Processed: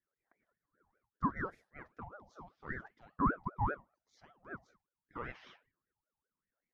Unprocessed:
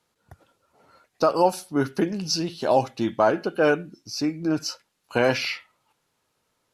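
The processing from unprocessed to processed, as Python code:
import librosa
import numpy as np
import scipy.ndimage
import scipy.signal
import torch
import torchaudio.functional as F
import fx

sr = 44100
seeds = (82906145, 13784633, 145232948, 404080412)

y = fx.wah_lfo(x, sr, hz=0.78, low_hz=430.0, high_hz=1200.0, q=9.9)
y = fx.hum_notches(y, sr, base_hz=50, count=6)
y = fx.ring_lfo(y, sr, carrier_hz=690.0, swing_pct=50, hz=5.1)
y = y * 10.0 ** (-3.5 / 20.0)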